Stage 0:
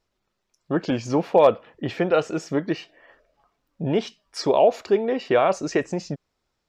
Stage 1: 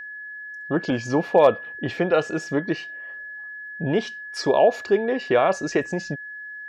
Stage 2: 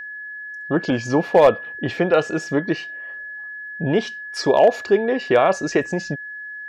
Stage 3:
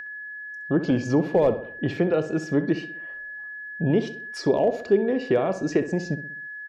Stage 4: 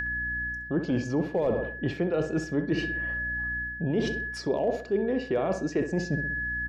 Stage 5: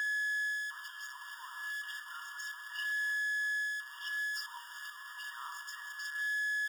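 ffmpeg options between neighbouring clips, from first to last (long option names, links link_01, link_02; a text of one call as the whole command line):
ffmpeg -i in.wav -af "aeval=exprs='val(0)+0.02*sin(2*PI*1700*n/s)':channel_layout=same" out.wav
ffmpeg -i in.wav -af "volume=8.5dB,asoftclip=hard,volume=-8.5dB,volume=3dB" out.wav
ffmpeg -i in.wav -filter_complex "[0:a]acrossover=split=440[link_01][link_02];[link_02]acompressor=threshold=-40dB:ratio=2[link_03];[link_01][link_03]amix=inputs=2:normalize=0,asplit=2[link_04][link_05];[link_05]adelay=64,lowpass=frequency=2800:poles=1,volume=-11.5dB,asplit=2[link_06][link_07];[link_07]adelay=64,lowpass=frequency=2800:poles=1,volume=0.49,asplit=2[link_08][link_09];[link_09]adelay=64,lowpass=frequency=2800:poles=1,volume=0.49,asplit=2[link_10][link_11];[link_11]adelay=64,lowpass=frequency=2800:poles=1,volume=0.49,asplit=2[link_12][link_13];[link_13]adelay=64,lowpass=frequency=2800:poles=1,volume=0.49[link_14];[link_06][link_08][link_10][link_12][link_14]amix=inputs=5:normalize=0[link_15];[link_04][link_15]amix=inputs=2:normalize=0" out.wav
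ffmpeg -i in.wav -af "aeval=exprs='val(0)+0.00631*(sin(2*PI*60*n/s)+sin(2*PI*2*60*n/s)/2+sin(2*PI*3*60*n/s)/3+sin(2*PI*4*60*n/s)/4+sin(2*PI*5*60*n/s)/5)':channel_layout=same,areverse,acompressor=threshold=-32dB:ratio=4,areverse,volume=6dB" out.wav
ffmpeg -i in.wav -af "aeval=exprs='val(0)+0.5*0.0282*sgn(val(0))':channel_layout=same,afftfilt=real='re*eq(mod(floor(b*sr/1024/930),2),1)':imag='im*eq(mod(floor(b*sr/1024/930),2),1)':win_size=1024:overlap=0.75,volume=-5.5dB" out.wav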